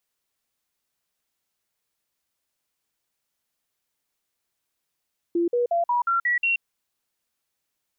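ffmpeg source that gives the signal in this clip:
ffmpeg -f lavfi -i "aevalsrc='0.112*clip(min(mod(t,0.18),0.13-mod(t,0.18))/0.005,0,1)*sin(2*PI*342*pow(2,floor(t/0.18)/2)*mod(t,0.18))':duration=1.26:sample_rate=44100" out.wav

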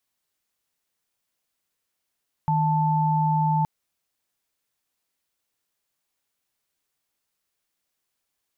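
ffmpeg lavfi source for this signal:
ffmpeg -f lavfi -i "aevalsrc='0.0841*(sin(2*PI*155.56*t)+sin(2*PI*880*t))':duration=1.17:sample_rate=44100" out.wav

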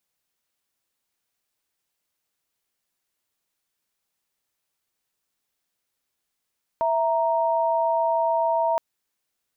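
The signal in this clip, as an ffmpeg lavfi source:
ffmpeg -f lavfi -i "aevalsrc='0.0794*(sin(2*PI*659.26*t)+sin(2*PI*932.33*t))':duration=1.97:sample_rate=44100" out.wav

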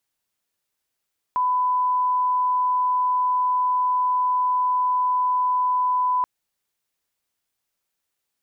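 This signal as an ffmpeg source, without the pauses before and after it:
ffmpeg -f lavfi -i "sine=frequency=1000:duration=4.88:sample_rate=44100,volume=0.06dB" out.wav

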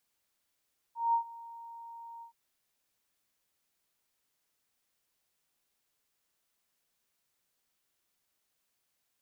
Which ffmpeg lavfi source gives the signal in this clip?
ffmpeg -f lavfi -i "aevalsrc='0.0708*sin(2*PI*928*t)':duration=1.373:sample_rate=44100,afade=type=in:duration=0.187,afade=type=out:start_time=0.187:duration=0.096:silence=0.0891,afade=type=out:start_time=1.27:duration=0.103" out.wav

